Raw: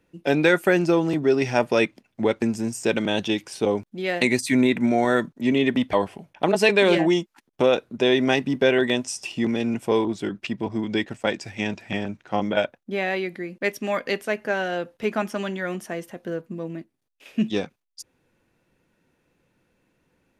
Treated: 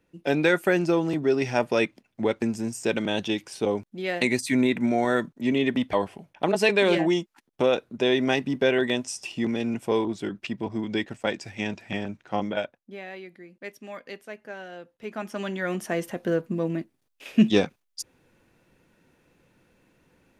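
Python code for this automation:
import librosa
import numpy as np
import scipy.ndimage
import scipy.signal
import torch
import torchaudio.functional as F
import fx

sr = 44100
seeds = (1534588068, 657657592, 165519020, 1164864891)

y = fx.gain(x, sr, db=fx.line((12.4, -3.0), (13.02, -14.0), (14.95, -14.0), (15.42, -3.0), (16.06, 5.0)))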